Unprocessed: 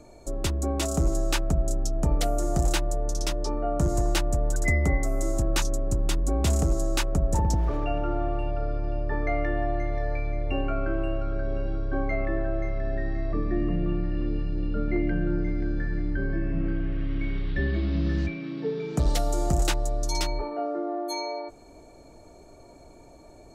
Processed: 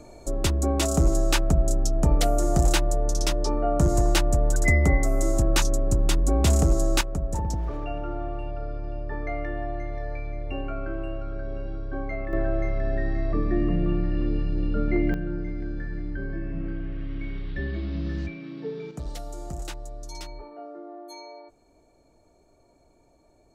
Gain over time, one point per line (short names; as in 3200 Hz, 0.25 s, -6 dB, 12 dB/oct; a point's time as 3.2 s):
+3.5 dB
from 7.01 s -4 dB
from 12.33 s +2.5 dB
from 15.14 s -4 dB
from 18.91 s -11 dB